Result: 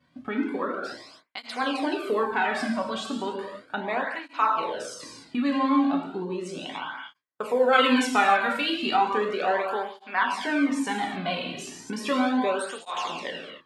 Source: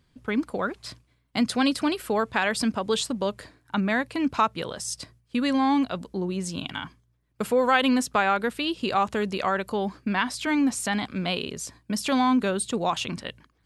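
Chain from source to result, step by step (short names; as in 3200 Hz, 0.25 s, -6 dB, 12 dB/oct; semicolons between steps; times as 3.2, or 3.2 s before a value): non-linear reverb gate 0.32 s falling, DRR -0.5 dB; upward compressor, threshold -22 dBFS; HPF 730 Hz 6 dB/oct; expander -38 dBFS; LPF 1100 Hz 6 dB/oct, from 7.73 s 3600 Hz, from 8.96 s 1500 Hz; tape flanging out of phase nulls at 0.35 Hz, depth 2.5 ms; gain +5 dB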